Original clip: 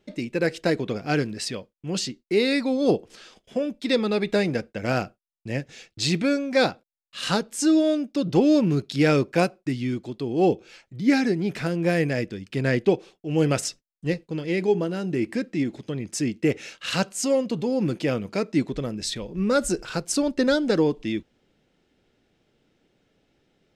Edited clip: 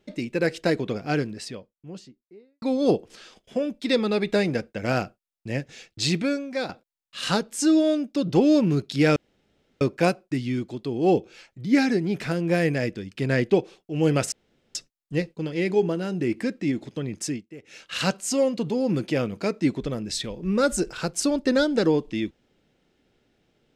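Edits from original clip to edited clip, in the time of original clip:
0:00.75–0:02.62: fade out and dull
0:06.08–0:06.69: fade out linear, to −11.5 dB
0:09.16: splice in room tone 0.65 s
0:13.67: splice in room tone 0.43 s
0:16.14–0:16.80: duck −20.5 dB, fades 0.24 s

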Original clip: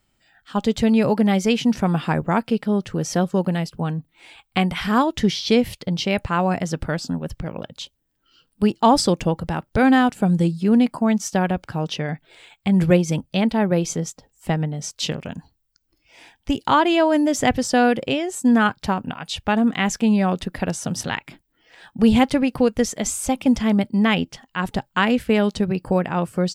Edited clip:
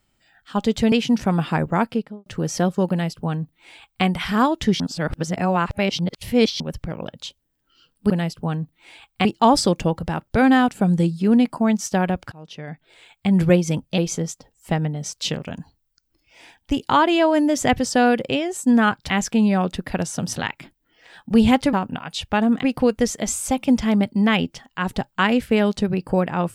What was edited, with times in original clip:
0:00.92–0:01.48: remove
0:02.40–0:02.82: fade out and dull
0:03.46–0:04.61: duplicate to 0:08.66
0:05.36–0:07.16: reverse
0:11.73–0:12.68: fade in linear, from −24 dB
0:13.39–0:13.76: remove
0:18.88–0:19.78: move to 0:22.41

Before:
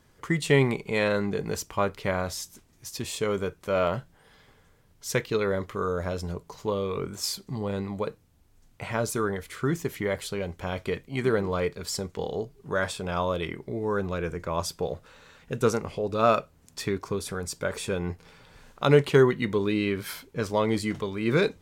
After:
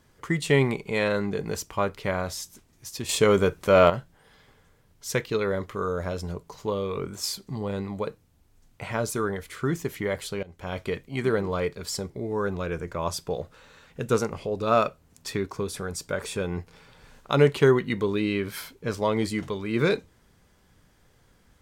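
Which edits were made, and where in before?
0:03.09–0:03.90: clip gain +8 dB
0:10.43–0:10.76: fade in, from −19 dB
0:12.10–0:13.62: remove

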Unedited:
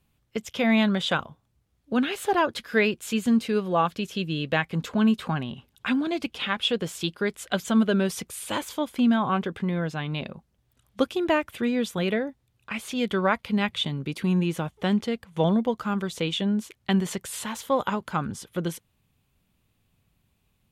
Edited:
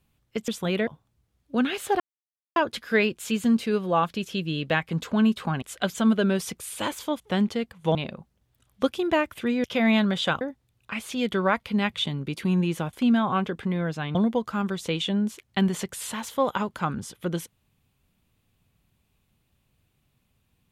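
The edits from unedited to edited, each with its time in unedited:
0:00.48–0:01.25: swap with 0:11.81–0:12.20
0:02.38: splice in silence 0.56 s
0:05.44–0:07.32: remove
0:08.90–0:10.12: swap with 0:14.72–0:15.47

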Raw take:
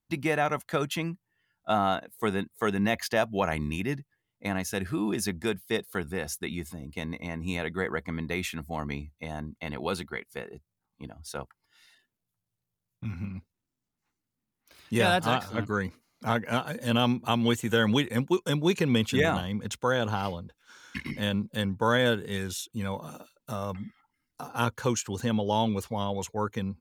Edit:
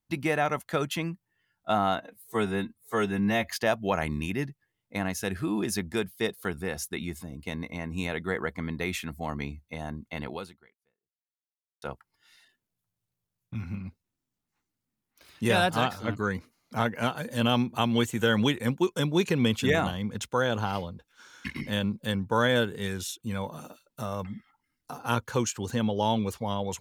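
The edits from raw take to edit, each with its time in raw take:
0:01.99–0:02.99: time-stretch 1.5×
0:09.78–0:11.32: fade out exponential

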